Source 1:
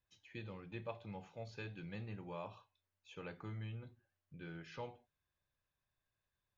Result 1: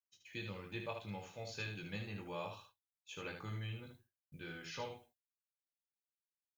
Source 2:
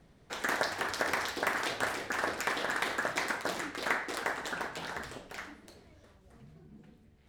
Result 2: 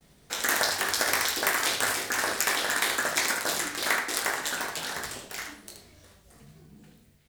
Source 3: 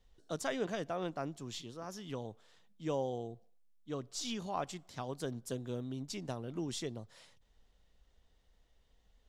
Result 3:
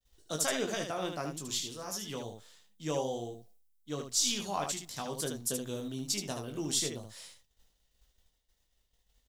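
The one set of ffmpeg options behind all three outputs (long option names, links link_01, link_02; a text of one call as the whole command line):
ffmpeg -i in.wav -af "agate=range=-33dB:threshold=-59dB:ratio=3:detection=peak,crystalizer=i=4:c=0,aecho=1:1:20|76:0.501|0.501" out.wav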